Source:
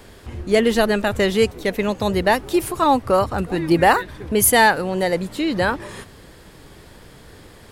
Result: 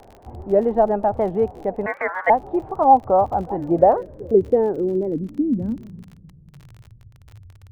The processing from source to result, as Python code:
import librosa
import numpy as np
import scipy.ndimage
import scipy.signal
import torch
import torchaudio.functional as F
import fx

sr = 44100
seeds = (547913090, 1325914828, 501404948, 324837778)

y = fx.filter_sweep_lowpass(x, sr, from_hz=780.0, to_hz=100.0, start_s=3.48, end_s=7.14, q=5.4)
y = fx.ring_mod(y, sr, carrier_hz=1300.0, at=(1.86, 2.3))
y = fx.dmg_crackle(y, sr, seeds[0], per_s=35.0, level_db=-23.0)
y = fx.high_shelf(y, sr, hz=3200.0, db=-10.0)
y = fx.record_warp(y, sr, rpm=78.0, depth_cents=160.0)
y = y * 10.0 ** (-5.5 / 20.0)